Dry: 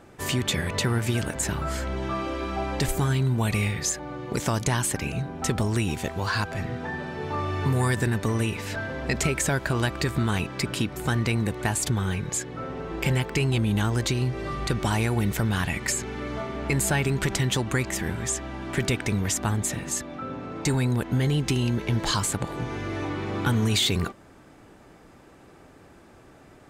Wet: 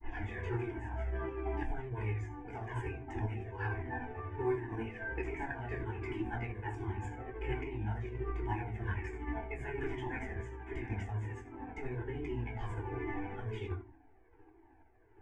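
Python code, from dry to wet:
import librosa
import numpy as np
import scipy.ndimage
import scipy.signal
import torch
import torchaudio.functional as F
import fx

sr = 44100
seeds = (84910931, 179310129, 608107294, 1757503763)

y = fx.tape_start_head(x, sr, length_s=0.45)
y = fx.peak_eq(y, sr, hz=140.0, db=-6.5, octaves=0.42)
y = fx.echo_feedback(y, sr, ms=77, feedback_pct=32, wet_db=-8.0)
y = fx.room_shoebox(y, sr, seeds[0], volume_m3=670.0, walls='furnished', distance_m=4.0)
y = fx.tremolo_random(y, sr, seeds[1], hz=3.5, depth_pct=55)
y = fx.stretch_grains(y, sr, factor=0.57, grain_ms=155.0)
y = fx.rider(y, sr, range_db=4, speed_s=0.5)
y = scipy.signal.sosfilt(scipy.signal.butter(2, 1800.0, 'lowpass', fs=sr, output='sos'), y)
y = fx.fixed_phaser(y, sr, hz=840.0, stages=8)
y = fx.comb_cascade(y, sr, direction='falling', hz=1.3)
y = F.gain(torch.from_numpy(y), -6.0).numpy()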